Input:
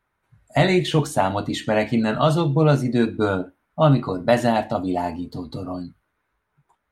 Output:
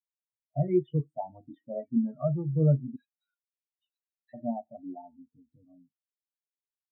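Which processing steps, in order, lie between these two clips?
2.96–4.34 s: elliptic band-pass 1.7–4.2 kHz; loudest bins only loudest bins 16; on a send at -21 dB: reverberation RT60 0.35 s, pre-delay 27 ms; on the sum: spectral contrast expander 2.5:1; trim -7 dB

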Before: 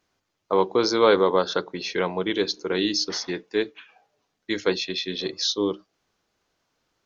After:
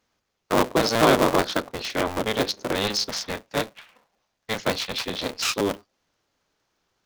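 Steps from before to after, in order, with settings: cycle switcher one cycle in 3, inverted; 2.75–4.99 s: peaking EQ 340 Hz -7 dB 0.71 oct

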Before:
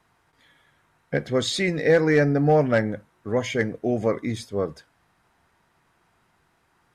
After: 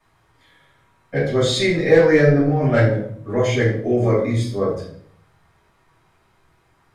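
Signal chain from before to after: 2.23–2.65 s: compressor with a negative ratio -23 dBFS, ratio -1; reverberation RT60 0.60 s, pre-delay 3 ms, DRR -9.5 dB; trim -7 dB

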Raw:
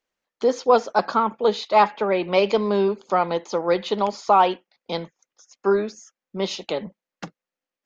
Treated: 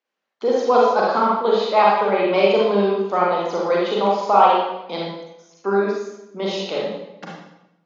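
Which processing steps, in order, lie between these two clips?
band-pass 200–4800 Hz; reverberation RT60 0.90 s, pre-delay 35 ms, DRR -4.5 dB; trim -2 dB

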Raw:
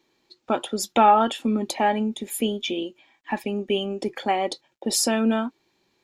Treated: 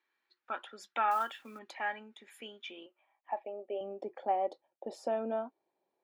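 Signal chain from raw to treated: band-pass sweep 1.6 kHz -> 640 Hz, 2.60–3.59 s; 1.11–1.59 s: companded quantiser 6-bit; 2.86–3.81 s: cabinet simulation 410–3000 Hz, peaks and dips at 620 Hz +7 dB, 1 kHz -6 dB, 1.6 kHz -6 dB; trim -4.5 dB

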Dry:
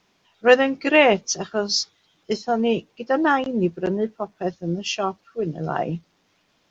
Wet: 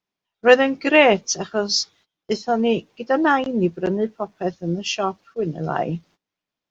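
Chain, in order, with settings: gate -50 dBFS, range -23 dB; trim +1.5 dB

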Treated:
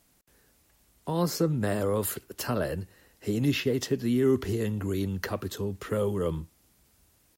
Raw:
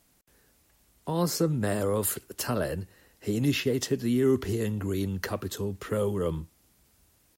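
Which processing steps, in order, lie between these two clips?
dynamic bell 8.8 kHz, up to -5 dB, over -49 dBFS, Q 0.96

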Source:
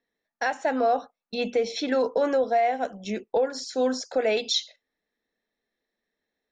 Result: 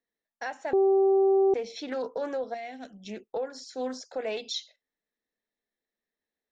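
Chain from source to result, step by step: 0.73–1.54 s: bleep 388 Hz -9.5 dBFS; 2.54–3.08 s: graphic EQ 250/500/1000/4000 Hz +5/-8/-11/+5 dB; loudspeaker Doppler distortion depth 0.2 ms; trim -8.5 dB

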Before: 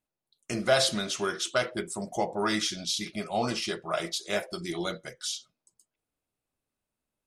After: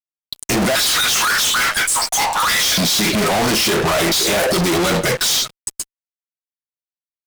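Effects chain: 0.75–2.78 s: steep high-pass 1.1 kHz 36 dB/octave; in parallel at +3 dB: compressor with a negative ratio -35 dBFS, ratio -0.5; on the sum: fuzz box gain 50 dB, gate -58 dBFS; trim -2.5 dB

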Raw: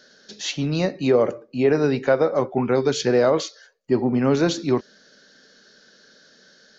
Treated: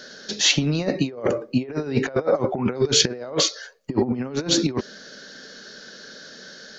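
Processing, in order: compressor with a negative ratio -26 dBFS, ratio -0.5; trim +4.5 dB

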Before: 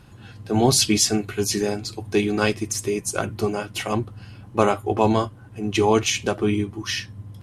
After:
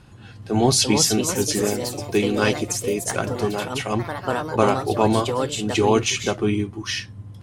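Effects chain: low-pass 11 kHz 24 dB/octave; ever faster or slower copies 422 ms, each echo +3 st, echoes 3, each echo -6 dB

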